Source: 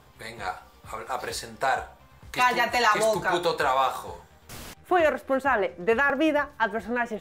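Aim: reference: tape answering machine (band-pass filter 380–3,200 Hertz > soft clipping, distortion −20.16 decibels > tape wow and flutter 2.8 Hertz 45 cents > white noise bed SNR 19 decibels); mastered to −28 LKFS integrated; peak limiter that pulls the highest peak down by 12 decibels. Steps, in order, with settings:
brickwall limiter −21.5 dBFS
band-pass filter 380–3,200 Hz
soft clipping −23.5 dBFS
tape wow and flutter 2.8 Hz 45 cents
white noise bed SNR 19 dB
level +6.5 dB

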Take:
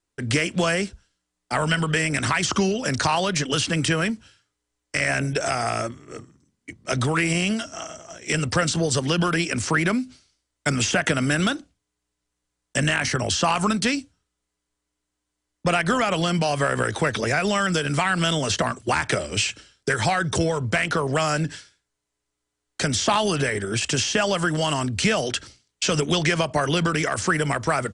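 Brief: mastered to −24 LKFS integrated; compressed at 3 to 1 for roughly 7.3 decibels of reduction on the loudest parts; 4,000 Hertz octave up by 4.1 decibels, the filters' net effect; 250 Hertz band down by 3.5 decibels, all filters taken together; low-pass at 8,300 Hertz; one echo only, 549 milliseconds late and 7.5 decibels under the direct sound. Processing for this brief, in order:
low-pass filter 8,300 Hz
parametric band 250 Hz −5.5 dB
parametric band 4,000 Hz +6 dB
downward compressor 3 to 1, threshold −27 dBFS
single-tap delay 549 ms −7.5 dB
level +4.5 dB

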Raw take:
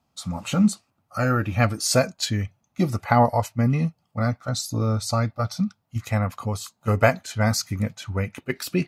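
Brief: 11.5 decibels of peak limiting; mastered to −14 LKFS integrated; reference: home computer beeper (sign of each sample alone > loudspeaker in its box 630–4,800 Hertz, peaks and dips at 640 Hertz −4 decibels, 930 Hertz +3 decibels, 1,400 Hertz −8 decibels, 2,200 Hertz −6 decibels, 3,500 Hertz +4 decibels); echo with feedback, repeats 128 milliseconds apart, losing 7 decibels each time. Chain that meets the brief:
brickwall limiter −13.5 dBFS
repeating echo 128 ms, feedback 45%, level −7 dB
sign of each sample alone
loudspeaker in its box 630–4,800 Hz, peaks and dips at 640 Hz −4 dB, 930 Hz +3 dB, 1,400 Hz −8 dB, 2,200 Hz −6 dB, 3,500 Hz +4 dB
level +17 dB

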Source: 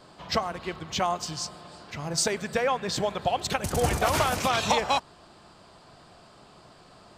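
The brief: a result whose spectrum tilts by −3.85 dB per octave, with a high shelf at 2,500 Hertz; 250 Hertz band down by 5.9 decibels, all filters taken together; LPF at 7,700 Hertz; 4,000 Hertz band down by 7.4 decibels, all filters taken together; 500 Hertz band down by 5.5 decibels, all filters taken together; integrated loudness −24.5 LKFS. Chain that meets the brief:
low-pass filter 7,700 Hz
parametric band 250 Hz −7.5 dB
parametric band 500 Hz −5 dB
high-shelf EQ 2,500 Hz −4 dB
parametric band 4,000 Hz −5.5 dB
level +7 dB

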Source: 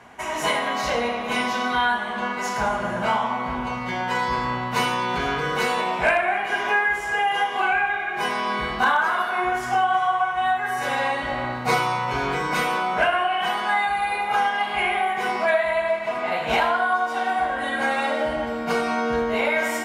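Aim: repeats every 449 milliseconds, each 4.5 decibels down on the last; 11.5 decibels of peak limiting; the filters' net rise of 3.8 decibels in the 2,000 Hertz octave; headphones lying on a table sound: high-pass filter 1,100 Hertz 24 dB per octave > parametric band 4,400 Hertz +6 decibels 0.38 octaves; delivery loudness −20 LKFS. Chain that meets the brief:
parametric band 2,000 Hz +5 dB
brickwall limiter −18 dBFS
high-pass filter 1,100 Hz 24 dB per octave
parametric band 4,400 Hz +6 dB 0.38 octaves
repeating echo 449 ms, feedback 60%, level −4.5 dB
level +5.5 dB

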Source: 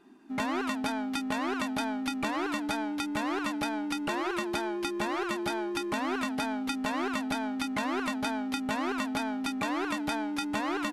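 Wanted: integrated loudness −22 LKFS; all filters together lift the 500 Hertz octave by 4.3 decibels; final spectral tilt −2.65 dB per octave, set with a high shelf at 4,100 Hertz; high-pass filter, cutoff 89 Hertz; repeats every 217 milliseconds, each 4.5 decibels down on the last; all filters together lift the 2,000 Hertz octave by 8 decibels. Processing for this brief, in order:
high-pass filter 89 Hz
parametric band 500 Hz +6 dB
parametric band 2,000 Hz +8.5 dB
high-shelf EQ 4,100 Hz +6 dB
repeating echo 217 ms, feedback 60%, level −4.5 dB
level +3.5 dB

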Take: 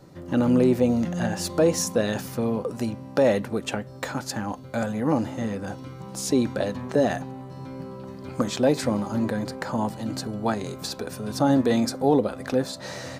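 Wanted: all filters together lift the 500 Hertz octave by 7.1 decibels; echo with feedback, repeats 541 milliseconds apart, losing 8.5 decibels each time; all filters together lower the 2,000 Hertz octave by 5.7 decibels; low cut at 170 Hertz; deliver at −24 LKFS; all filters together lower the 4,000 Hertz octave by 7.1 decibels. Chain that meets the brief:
high-pass filter 170 Hz
parametric band 500 Hz +8.5 dB
parametric band 2,000 Hz −6.5 dB
parametric band 4,000 Hz −8 dB
repeating echo 541 ms, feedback 38%, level −8.5 dB
level −3.5 dB

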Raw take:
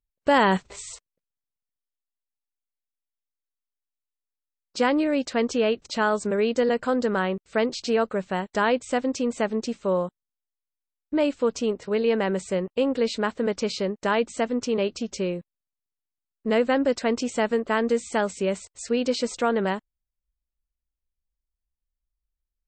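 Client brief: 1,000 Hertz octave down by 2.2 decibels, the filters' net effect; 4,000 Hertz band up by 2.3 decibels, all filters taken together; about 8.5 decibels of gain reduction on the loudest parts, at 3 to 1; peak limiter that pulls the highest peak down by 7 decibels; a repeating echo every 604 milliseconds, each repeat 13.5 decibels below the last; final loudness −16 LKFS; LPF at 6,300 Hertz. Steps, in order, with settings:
low-pass filter 6,300 Hz
parametric band 1,000 Hz −3 dB
parametric band 4,000 Hz +4 dB
downward compressor 3 to 1, threshold −29 dBFS
brickwall limiter −23 dBFS
repeating echo 604 ms, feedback 21%, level −13.5 dB
level +17.5 dB

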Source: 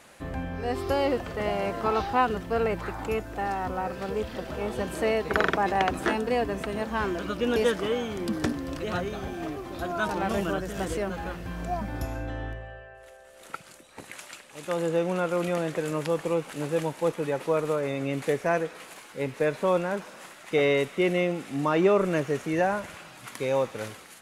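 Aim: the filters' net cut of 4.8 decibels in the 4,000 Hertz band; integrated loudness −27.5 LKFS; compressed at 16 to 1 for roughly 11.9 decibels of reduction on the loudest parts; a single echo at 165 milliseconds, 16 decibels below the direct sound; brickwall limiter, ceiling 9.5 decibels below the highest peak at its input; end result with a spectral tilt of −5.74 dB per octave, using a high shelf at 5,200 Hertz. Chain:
parametric band 4,000 Hz −5.5 dB
high-shelf EQ 5,200 Hz −3.5 dB
downward compressor 16 to 1, threshold −30 dBFS
brickwall limiter −26.5 dBFS
single-tap delay 165 ms −16 dB
level +9.5 dB

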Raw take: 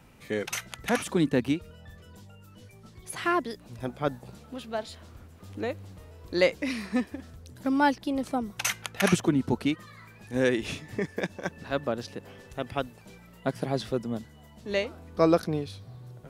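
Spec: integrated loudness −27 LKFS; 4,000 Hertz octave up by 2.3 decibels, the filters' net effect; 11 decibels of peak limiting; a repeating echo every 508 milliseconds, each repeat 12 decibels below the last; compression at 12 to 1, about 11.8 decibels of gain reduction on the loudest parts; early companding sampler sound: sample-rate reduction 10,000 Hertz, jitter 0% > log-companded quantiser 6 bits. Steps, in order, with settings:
parametric band 4,000 Hz +3 dB
downward compressor 12 to 1, threshold −28 dBFS
brickwall limiter −24.5 dBFS
repeating echo 508 ms, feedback 25%, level −12 dB
sample-rate reduction 10,000 Hz, jitter 0%
log-companded quantiser 6 bits
level +11 dB

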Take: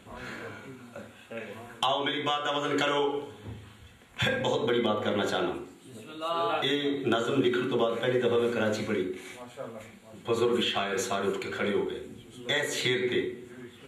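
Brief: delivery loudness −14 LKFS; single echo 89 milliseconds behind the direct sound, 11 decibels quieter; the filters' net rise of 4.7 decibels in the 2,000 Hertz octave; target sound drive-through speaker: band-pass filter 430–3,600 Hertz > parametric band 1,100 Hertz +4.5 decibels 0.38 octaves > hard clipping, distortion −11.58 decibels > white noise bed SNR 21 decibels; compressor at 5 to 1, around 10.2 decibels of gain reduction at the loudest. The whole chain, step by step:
parametric band 2,000 Hz +6 dB
downward compressor 5 to 1, threshold −32 dBFS
band-pass filter 430–3,600 Hz
parametric band 1,100 Hz +4.5 dB 0.38 octaves
single-tap delay 89 ms −11 dB
hard clipping −33 dBFS
white noise bed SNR 21 dB
level +24.5 dB

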